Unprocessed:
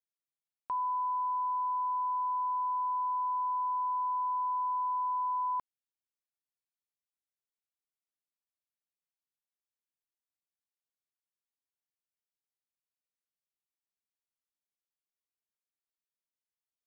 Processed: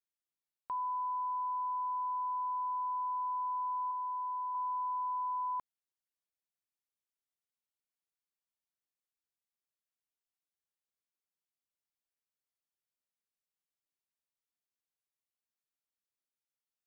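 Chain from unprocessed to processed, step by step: 3.91–4.55 s: high-pass 750 Hz 6 dB/octave; trim -3.5 dB

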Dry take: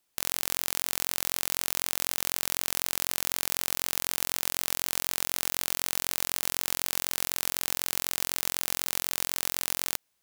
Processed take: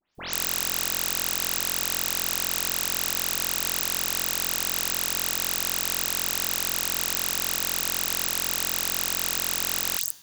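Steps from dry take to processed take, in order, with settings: delay that grows with frequency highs late, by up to 149 ms; on a send: reverberation RT60 1.1 s, pre-delay 47 ms, DRR 17.5 dB; on the sum: trim +4 dB

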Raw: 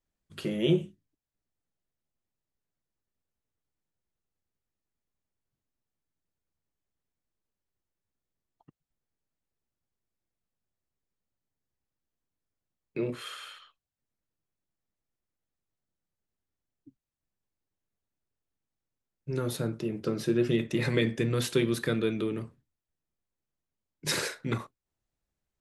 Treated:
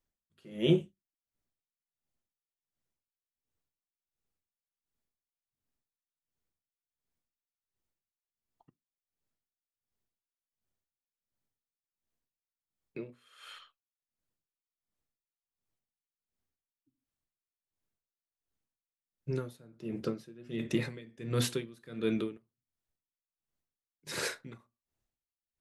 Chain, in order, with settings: 22.37–24.07 s: compression 4:1, threshold -47 dBFS, peak gain reduction 13 dB; reverberation, pre-delay 4 ms, DRR 18 dB; logarithmic tremolo 1.4 Hz, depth 26 dB

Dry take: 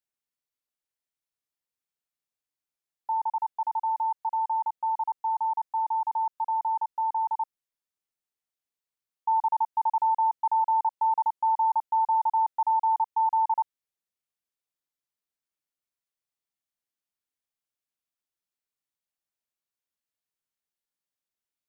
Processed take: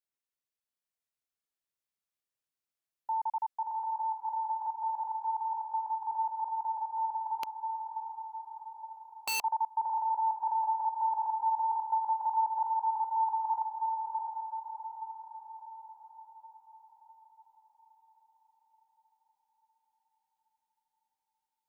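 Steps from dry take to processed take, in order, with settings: echo that smears into a reverb 702 ms, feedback 54%, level -3.5 dB; 7.43–9.42 s: integer overflow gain 23 dB; trim -4.5 dB

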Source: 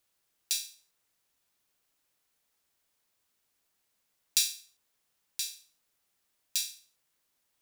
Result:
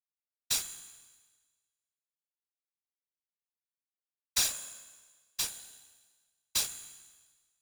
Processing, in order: fuzz box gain 33 dB, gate -35 dBFS; feedback comb 68 Hz, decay 1.4 s, harmonics all, mix 70%; whisper effect

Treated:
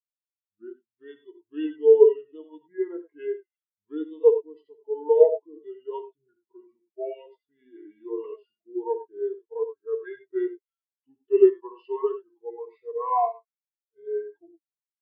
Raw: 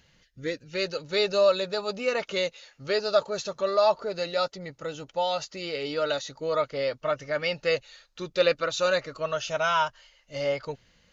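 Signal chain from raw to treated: high-pass 680 Hz 6 dB/octave; treble shelf 2.3 kHz -6.5 dB; gated-style reverb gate 90 ms rising, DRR 4 dB; speed mistake 45 rpm record played at 33 rpm; spectral contrast expander 2.5:1; trim +8 dB

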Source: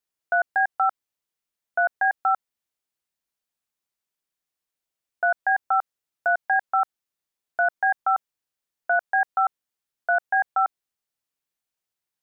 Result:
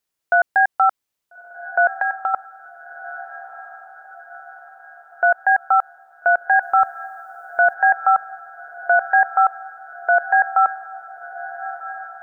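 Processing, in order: 1.88–2.34 s: compression, threshold -25 dBFS, peak gain reduction 7.5 dB; 6.62–7.74 s: tone controls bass +9 dB, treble +12 dB; echo that smears into a reverb 1344 ms, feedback 53%, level -15 dB; trim +6 dB

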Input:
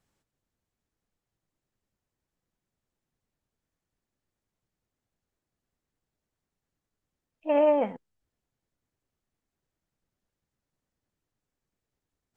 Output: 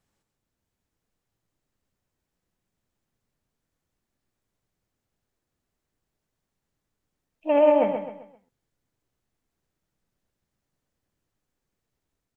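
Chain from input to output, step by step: level rider gain up to 3 dB; feedback delay 131 ms, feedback 37%, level -7 dB

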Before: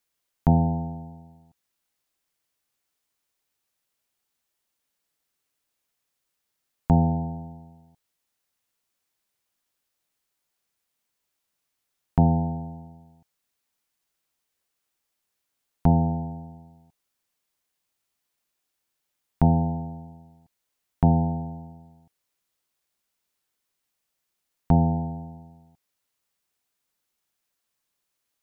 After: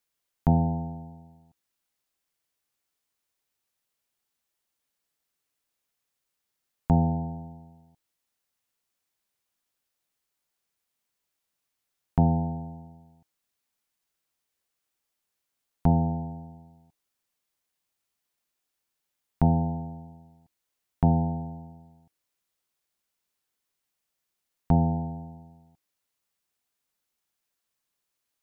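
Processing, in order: de-hum 312.7 Hz, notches 29; trim -2.5 dB

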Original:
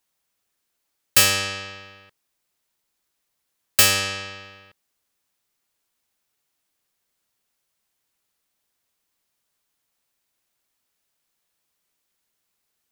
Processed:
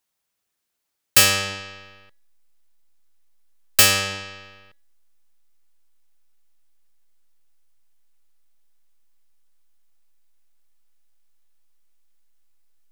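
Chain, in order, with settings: in parallel at -5.5 dB: hysteresis with a dead band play -19.5 dBFS; on the sum: de-hum 279.6 Hz, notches 17; trim -2 dB

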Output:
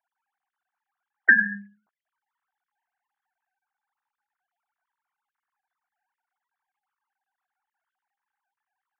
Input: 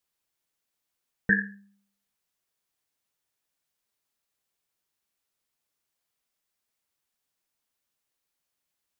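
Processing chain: formants replaced by sine waves; high-order bell 1.1 kHz +15 dB; compression 6:1, threshold -17 dBFS, peak gain reduction 11 dB; trim +3.5 dB

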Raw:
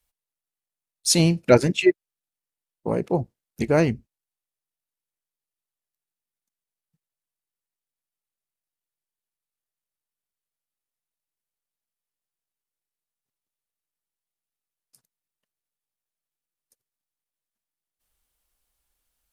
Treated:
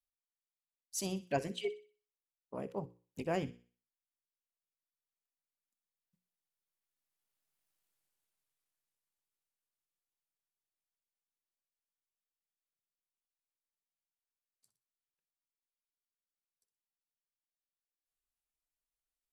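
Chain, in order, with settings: Doppler pass-by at 7.81 s, 40 m/s, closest 19 m; hum notches 60/120/180/240/300/360/420/480/540 Hz; feedback echo behind a high-pass 62 ms, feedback 36%, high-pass 1.6 kHz, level -13.5 dB; trim +5.5 dB

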